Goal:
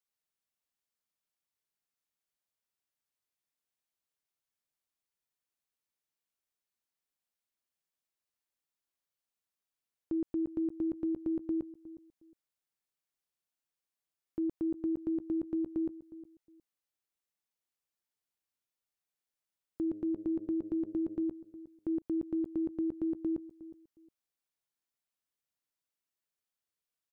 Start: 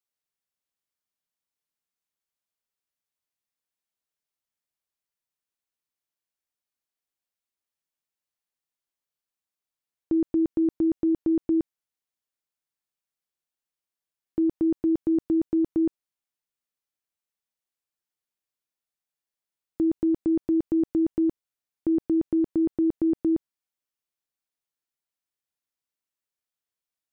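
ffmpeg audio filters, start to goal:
ffmpeg -i in.wav -filter_complex "[0:a]asettb=1/sr,asplit=3[link_01][link_02][link_03];[link_01]atrim=end=19.824[link_04];[link_02]atrim=start=19.82:end=21.23,asetpts=PTS-STARTPTS,afade=type=in:duration=0.004:curve=qsin,afade=type=out:start_time=1.406:duration=0.004:curve=qsin,bandreject=frequency=103.5:width_type=h:width=4,bandreject=frequency=207:width_type=h:width=4,bandreject=frequency=310.5:width_type=h:width=4,bandreject=frequency=414:width_type=h:width=4,bandreject=frequency=517.5:width_type=h:width=4,bandreject=frequency=621:width_type=h:width=4[link_05];[link_03]atrim=start=21.226[link_06];[link_04][link_05]acrossfade=duration=0.004:curve1=hsin:curve2=qsin[link_07];[link_07][link_06]acrossfade=duration=0.004:curve1=qsin:curve2=hsin,alimiter=level_in=2dB:limit=-24dB:level=0:latency=1:release=61,volume=-2dB,asplit=2[link_08][link_09];[link_09]adelay=361,lowpass=frequency=880:poles=1,volume=-15.5dB,asplit=2[link_10][link_11];[link_11]adelay=361,lowpass=frequency=880:poles=1,volume=0.24[link_12];[link_08][link_10][link_12]amix=inputs=3:normalize=0,volume=-2dB" out.wav

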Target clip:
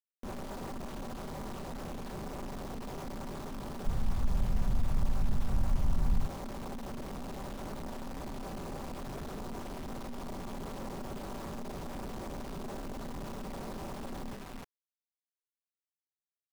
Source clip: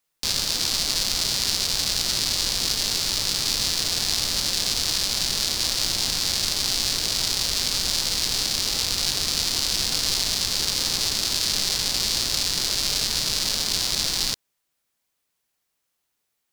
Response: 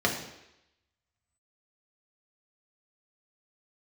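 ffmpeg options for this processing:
-filter_complex "[0:a]lowpass=frequency=1000:width=0.5412,lowpass=frequency=1000:width=1.3066,bandreject=frequency=50:width_type=h:width=6,bandreject=frequency=100:width_type=h:width=6,bandreject=frequency=150:width_type=h:width=6,bandreject=frequency=200:width_type=h:width=6,bandreject=frequency=250:width_type=h:width=6,bandreject=frequency=300:width_type=h:width=6,bandreject=frequency=350:width_type=h:width=6,bandreject=frequency=400:width_type=h:width=6,bandreject=frequency=450:width_type=h:width=6,aecho=1:1:5.2:0.54,aecho=1:1:301:0.237,alimiter=level_in=5.5dB:limit=-24dB:level=0:latency=1:release=109,volume=-5.5dB,acrusher=bits=7:mix=0:aa=0.000001,asoftclip=type=tanh:threshold=-38.5dB,tremolo=f=240:d=0.857,asplit=3[link_01][link_02][link_03];[link_01]afade=type=out:start_time=3.85:duration=0.02[link_04];[link_02]asubboost=boost=9:cutoff=120,afade=type=in:start_time=3.85:duration=0.02,afade=type=out:start_time=6.26:duration=0.02[link_05];[link_03]afade=type=in:start_time=6.26:duration=0.02[link_06];[link_04][link_05][link_06]amix=inputs=3:normalize=0,volume=6dB"

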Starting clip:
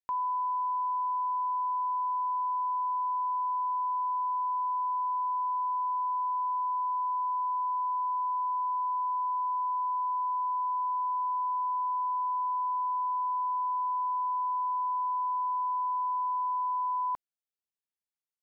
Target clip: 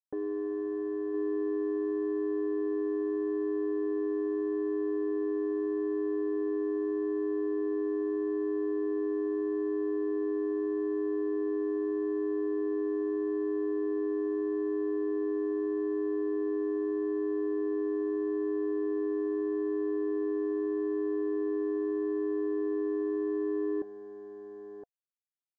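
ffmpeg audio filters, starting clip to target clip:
ffmpeg -i in.wav -af "aecho=1:1:731:0.299,aeval=exprs='clip(val(0),-1,0.00596)':channel_layout=same,aeval=exprs='val(0)*sin(2*PI*430*n/s)':channel_layout=same,asuperstop=centerf=930:order=8:qfactor=4.9,equalizer=frequency=860:width_type=o:width=1:gain=4.5,asetrate=31752,aresample=44100,aresample=16000,aeval=exprs='sgn(val(0))*max(abs(val(0))-0.002,0)':channel_layout=same,aresample=44100,firequalizer=gain_entry='entry(480,0);entry(700,15);entry(1000,-23);entry(1500,-8);entry(2200,-27)':delay=0.05:min_phase=1,volume=4.5dB" out.wav

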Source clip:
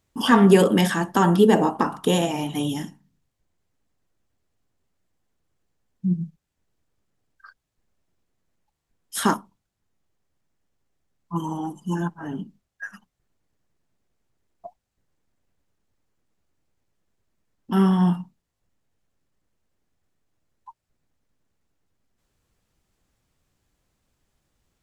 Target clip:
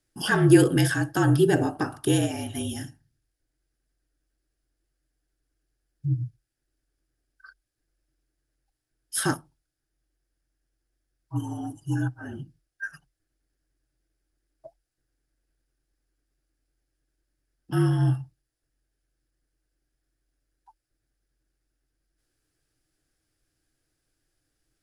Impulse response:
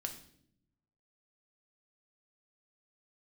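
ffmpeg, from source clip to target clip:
-af "afreqshift=-45,equalizer=frequency=125:width_type=o:width=0.33:gain=6,equalizer=frequency=200:width_type=o:width=0.33:gain=-11,equalizer=frequency=315:width_type=o:width=0.33:gain=11,equalizer=frequency=1000:width_type=o:width=0.33:gain=-10,equalizer=frequency=1600:width_type=o:width=0.33:gain=8,equalizer=frequency=5000:width_type=o:width=0.33:gain=8,equalizer=frequency=10000:width_type=o:width=0.33:gain=12,volume=-6dB"

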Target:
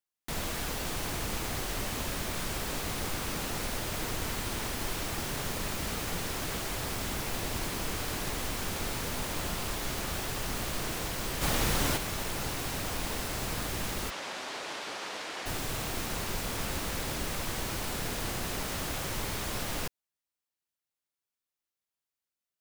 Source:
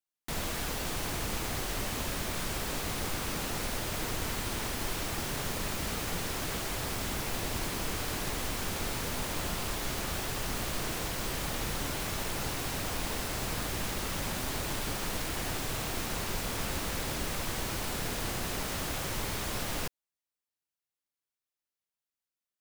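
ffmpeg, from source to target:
ffmpeg -i in.wav -filter_complex "[0:a]asplit=3[link_01][link_02][link_03];[link_01]afade=type=out:start_time=11.41:duration=0.02[link_04];[link_02]acontrast=50,afade=type=in:start_time=11.41:duration=0.02,afade=type=out:start_time=11.96:duration=0.02[link_05];[link_03]afade=type=in:start_time=11.96:duration=0.02[link_06];[link_04][link_05][link_06]amix=inputs=3:normalize=0,asplit=3[link_07][link_08][link_09];[link_07]afade=type=out:start_time=14.09:duration=0.02[link_10];[link_08]highpass=440,lowpass=5400,afade=type=in:start_time=14.09:duration=0.02,afade=type=out:start_time=15.45:duration=0.02[link_11];[link_09]afade=type=in:start_time=15.45:duration=0.02[link_12];[link_10][link_11][link_12]amix=inputs=3:normalize=0" out.wav

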